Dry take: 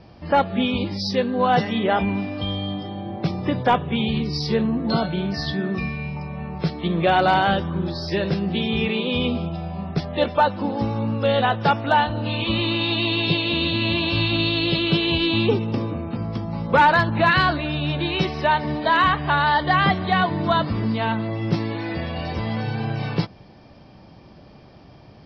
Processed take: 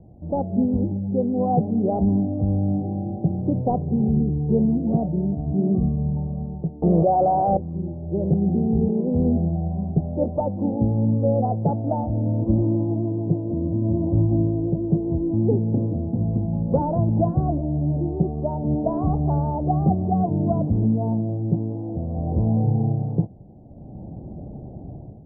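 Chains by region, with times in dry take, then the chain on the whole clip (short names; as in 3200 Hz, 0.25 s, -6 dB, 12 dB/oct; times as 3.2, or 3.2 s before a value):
6.82–7.57 band shelf 920 Hz +11 dB 2.4 oct + fast leveller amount 70%
whole clip: elliptic low-pass 760 Hz, stop band 60 dB; low shelf 350 Hz +11 dB; AGC; gain -8 dB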